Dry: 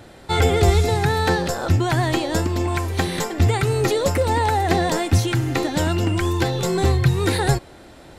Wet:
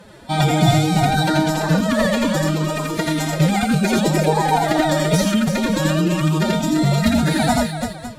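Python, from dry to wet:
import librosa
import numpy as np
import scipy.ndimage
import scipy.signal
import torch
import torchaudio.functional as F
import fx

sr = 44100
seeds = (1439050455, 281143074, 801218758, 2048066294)

y = fx.echo_multitap(x, sr, ms=(81, 87, 339, 365, 557), db=(-5.0, -4.0, -6.0, -18.5, -13.0))
y = fx.pitch_keep_formants(y, sr, semitones=10.0)
y = fx.cheby_harmonics(y, sr, harmonics=(4,), levels_db=(-29,), full_scale_db=-3.0)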